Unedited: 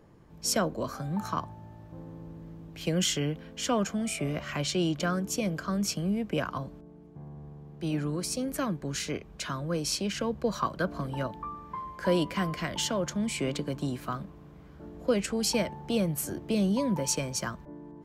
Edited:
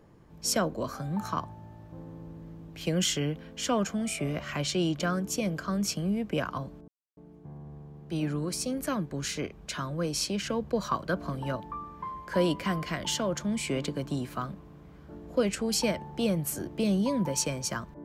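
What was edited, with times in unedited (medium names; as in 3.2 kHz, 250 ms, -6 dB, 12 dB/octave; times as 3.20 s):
6.88 s: insert silence 0.29 s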